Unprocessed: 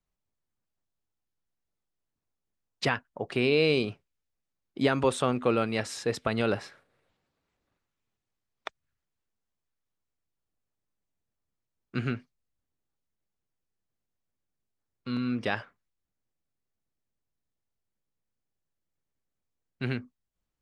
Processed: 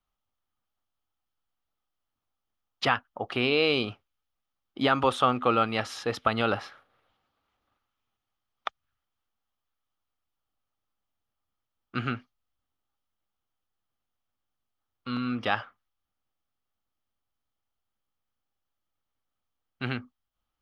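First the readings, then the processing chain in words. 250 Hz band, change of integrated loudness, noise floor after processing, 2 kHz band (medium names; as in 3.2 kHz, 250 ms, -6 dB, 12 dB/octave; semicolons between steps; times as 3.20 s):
-1.0 dB, +1.5 dB, -85 dBFS, +2.5 dB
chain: graphic EQ with 31 bands 160 Hz -9 dB, 400 Hz -4 dB, 800 Hz +7 dB, 1.25 kHz +11 dB, 3.15 kHz +8 dB, 8 kHz -12 dB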